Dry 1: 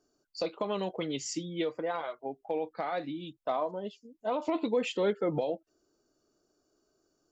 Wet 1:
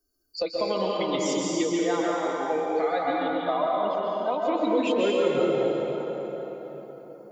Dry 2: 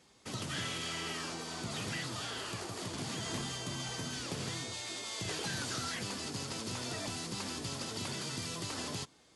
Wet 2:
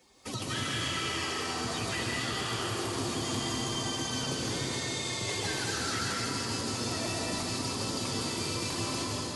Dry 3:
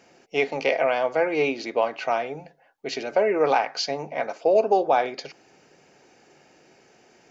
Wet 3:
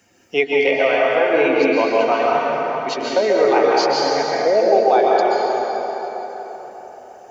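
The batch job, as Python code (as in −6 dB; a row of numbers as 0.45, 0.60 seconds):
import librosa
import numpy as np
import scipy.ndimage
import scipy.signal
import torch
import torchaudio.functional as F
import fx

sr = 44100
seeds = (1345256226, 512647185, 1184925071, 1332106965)

p1 = fx.bin_expand(x, sr, power=1.5)
p2 = fx.peak_eq(p1, sr, hz=160.0, db=-8.0, octaves=0.38)
p3 = fx.rider(p2, sr, range_db=3, speed_s=0.5)
p4 = p2 + F.gain(torch.from_numpy(p3), 0.0).numpy()
p5 = fx.rev_plate(p4, sr, seeds[0], rt60_s=3.2, hf_ratio=0.65, predelay_ms=115, drr_db=-4.0)
p6 = fx.band_squash(p5, sr, depth_pct=40)
y = F.gain(torch.from_numpy(p6), -1.0).numpy()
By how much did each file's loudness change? +7.5, +6.0, +7.0 LU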